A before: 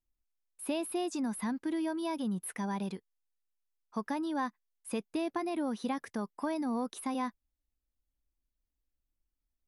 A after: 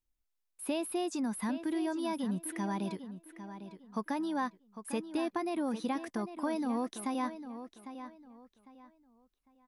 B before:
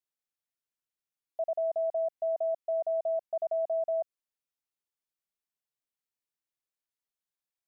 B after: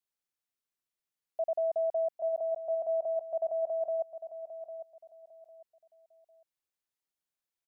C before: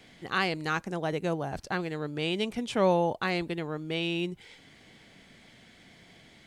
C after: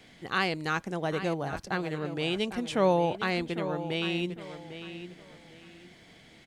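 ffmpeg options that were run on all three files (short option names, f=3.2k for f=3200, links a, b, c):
-filter_complex "[0:a]asplit=2[a][b];[b]adelay=802,lowpass=f=4.6k:p=1,volume=-11dB,asplit=2[c][d];[d]adelay=802,lowpass=f=4.6k:p=1,volume=0.28,asplit=2[e][f];[f]adelay=802,lowpass=f=4.6k:p=1,volume=0.28[g];[a][c][e][g]amix=inputs=4:normalize=0"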